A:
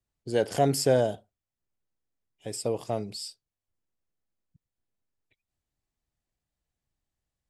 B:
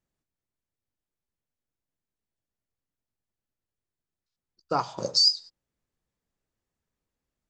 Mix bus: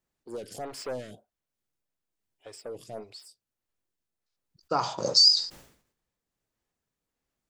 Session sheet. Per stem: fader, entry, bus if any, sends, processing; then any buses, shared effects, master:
+0.5 dB, 0.00 s, no send, soft clipping −29 dBFS, distortion −5 dB; phaser with staggered stages 1.7 Hz
+2.5 dB, 0.00 s, no send, level that may fall only so fast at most 100 dB per second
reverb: not used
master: low-shelf EQ 180 Hz −5.5 dB; shaped tremolo triangle 1.4 Hz, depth 35%

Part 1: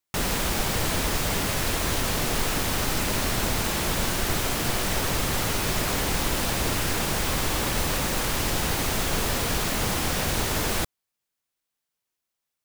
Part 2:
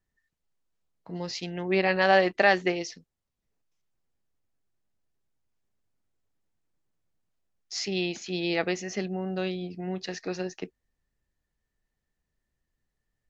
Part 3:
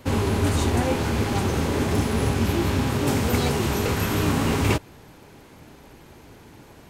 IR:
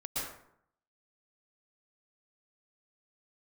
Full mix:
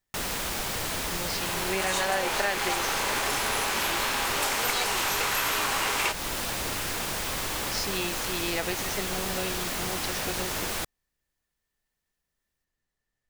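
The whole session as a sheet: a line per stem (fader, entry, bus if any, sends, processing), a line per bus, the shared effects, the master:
−3.0 dB, 0.00 s, no send, no processing
+1.0 dB, 0.00 s, no send, no processing
−3.0 dB, 1.35 s, no send, high-pass filter 790 Hz 12 dB per octave; automatic gain control gain up to 11.5 dB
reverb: not used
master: low-shelf EQ 390 Hz −7.5 dB; downward compressor 3 to 1, threshold −25 dBFS, peak gain reduction 8.5 dB

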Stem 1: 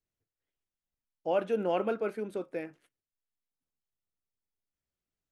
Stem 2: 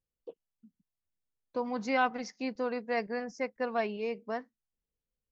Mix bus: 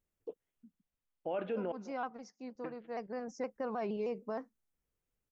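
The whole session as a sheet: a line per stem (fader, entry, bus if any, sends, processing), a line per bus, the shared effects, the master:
0.0 dB, 0.00 s, muted 0:01.72–0:02.64, no send, echo send −23 dB, low-pass filter 3,300 Hz 24 dB per octave
+1.5 dB, 0.00 s, no send, no echo send, flat-topped bell 2,800 Hz −9 dB; pitch modulation by a square or saw wave saw down 6.4 Hz, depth 100 cents; automatic ducking −12 dB, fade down 0.75 s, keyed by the first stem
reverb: not used
echo: single-tap delay 204 ms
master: brickwall limiter −28 dBFS, peak gain reduction 10 dB

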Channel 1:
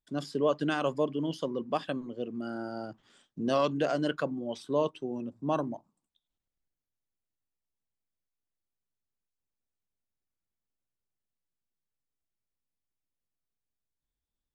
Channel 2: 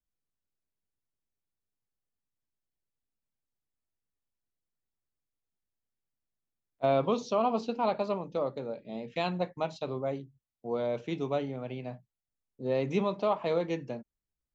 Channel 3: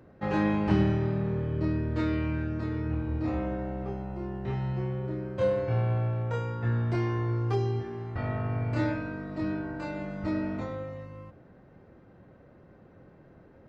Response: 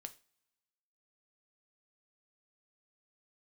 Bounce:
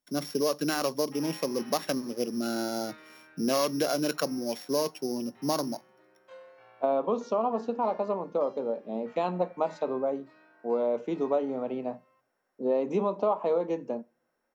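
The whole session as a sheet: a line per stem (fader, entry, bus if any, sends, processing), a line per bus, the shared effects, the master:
+1.5 dB, 0.00 s, bus A, send −12 dB, samples sorted by size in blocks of 8 samples
−1.0 dB, 0.00 s, bus A, send −4 dB, octave-band graphic EQ 125/250/500/1,000/2,000/4,000 Hz −4/+5/+4/+6/−7/−8 dB
−15.0 dB, 0.90 s, no bus, no send, high-pass filter 850 Hz 12 dB per octave
bus A: 0.0 dB, high-pass filter 130 Hz 24 dB per octave; downward compressor, threshold −26 dBFS, peak gain reduction 8 dB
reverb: on, pre-delay 3 ms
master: speech leveller 2 s

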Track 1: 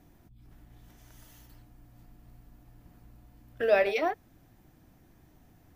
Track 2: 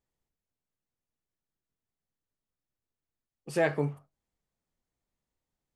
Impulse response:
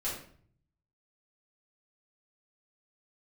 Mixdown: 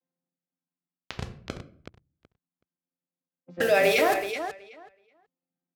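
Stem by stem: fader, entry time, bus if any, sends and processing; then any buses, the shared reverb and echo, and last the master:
−3.5 dB, 0.00 s, send −8 dB, echo send −7.5 dB, hold until the input has moved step −42.5 dBFS; high-shelf EQ 2,700 Hz +9 dB; envelope flattener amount 70%
+1.5 dB, 0.00 s, no send, no echo send, channel vocoder with a chord as carrier bare fifth, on F3; automatic ducking −10 dB, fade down 0.20 s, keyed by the first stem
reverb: on, RT60 0.55 s, pre-delay 4 ms
echo: repeating echo 375 ms, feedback 16%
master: high-pass filter 64 Hz; low-pass that shuts in the quiet parts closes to 2,900 Hz, open at −23.5 dBFS

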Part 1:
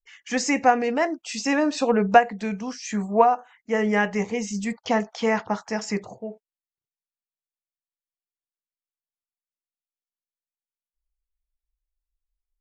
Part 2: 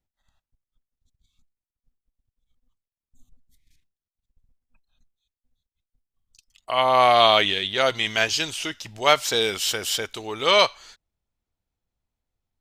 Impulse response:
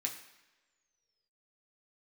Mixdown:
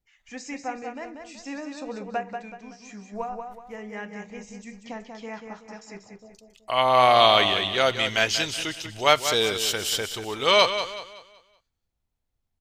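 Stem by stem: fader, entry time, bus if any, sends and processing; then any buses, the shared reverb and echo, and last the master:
−16.5 dB, 0.00 s, send −8.5 dB, echo send −4.5 dB, hollow resonant body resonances 2,400/3,900 Hz, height 8 dB
−1.0 dB, 0.00 s, no send, echo send −10 dB, no processing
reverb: on, pre-delay 3 ms
echo: repeating echo 188 ms, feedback 36%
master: low-shelf EQ 150 Hz +3.5 dB

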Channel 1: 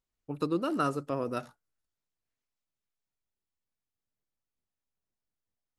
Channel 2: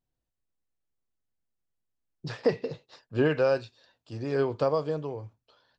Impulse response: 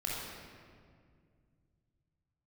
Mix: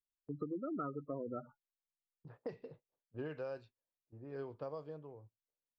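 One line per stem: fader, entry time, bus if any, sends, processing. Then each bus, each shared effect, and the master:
−4.0 dB, 0.00 s, no send, gate on every frequency bin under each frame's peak −10 dB strong
−17.0 dB, 0.00 s, no send, low-pass that shuts in the quiet parts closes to 440 Hz, open at −21.5 dBFS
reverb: not used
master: noise gate −58 dBFS, range −15 dB; high-shelf EQ 2,700 Hz −6.5 dB; downward compressor, threshold −37 dBFS, peak gain reduction 7.5 dB

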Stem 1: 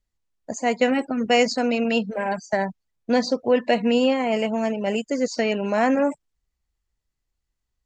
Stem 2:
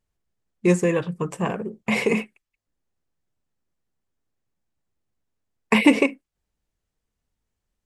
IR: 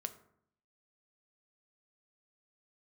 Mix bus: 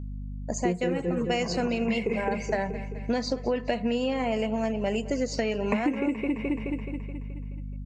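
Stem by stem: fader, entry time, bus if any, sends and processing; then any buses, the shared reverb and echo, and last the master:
−4.0 dB, 0.00 s, send −4 dB, echo send −17.5 dB, mains hum 50 Hz, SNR 11 dB
+2.5 dB, 0.00 s, no send, echo send −4.5 dB, every bin expanded away from the loudest bin 1.5 to 1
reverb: on, RT60 0.65 s, pre-delay 4 ms
echo: repeating echo 213 ms, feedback 54%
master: downward compressor 10 to 1, threshold −23 dBFS, peak gain reduction 18 dB

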